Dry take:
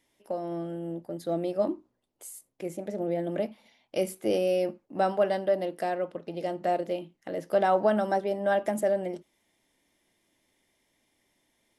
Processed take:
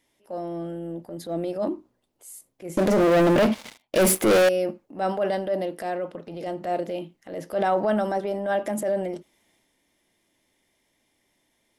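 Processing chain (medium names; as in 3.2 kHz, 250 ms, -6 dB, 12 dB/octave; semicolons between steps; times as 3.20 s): transient shaper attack -7 dB, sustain +4 dB; 2.77–4.49 s: waveshaping leveller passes 5; trim +2 dB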